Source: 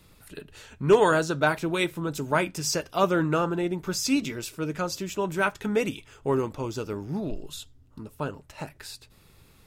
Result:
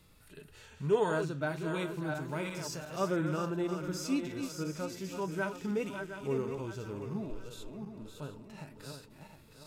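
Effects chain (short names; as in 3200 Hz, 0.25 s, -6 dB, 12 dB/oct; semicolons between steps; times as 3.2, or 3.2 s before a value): regenerating reverse delay 0.357 s, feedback 55%, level -7.5 dB; in parallel at -1 dB: compressor, threshold -37 dBFS, peak gain reduction 22 dB; 2.28–2.93 on the sum: crackle 180/s -36 dBFS; harmonic-percussive split percussive -13 dB; gain -8 dB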